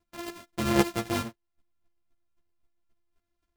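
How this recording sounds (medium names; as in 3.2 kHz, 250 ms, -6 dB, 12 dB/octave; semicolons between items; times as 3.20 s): a buzz of ramps at a fixed pitch in blocks of 128 samples; chopped level 3.8 Hz, depth 65%, duty 10%; a shimmering, thickened sound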